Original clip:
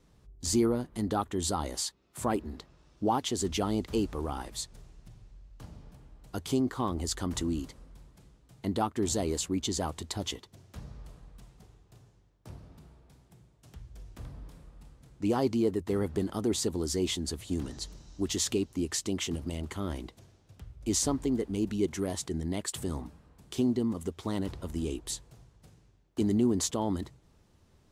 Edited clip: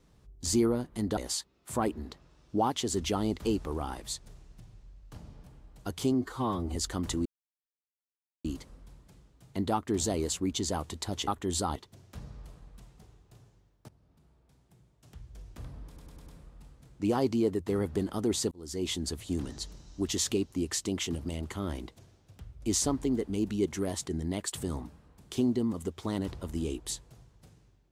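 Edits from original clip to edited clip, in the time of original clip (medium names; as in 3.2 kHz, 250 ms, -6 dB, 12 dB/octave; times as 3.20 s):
1.17–1.65 s: move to 10.36 s
6.62–7.03 s: stretch 1.5×
7.53 s: insert silence 1.19 s
12.49–13.97 s: fade in, from -21 dB
14.47 s: stutter 0.10 s, 5 plays
16.72–17.17 s: fade in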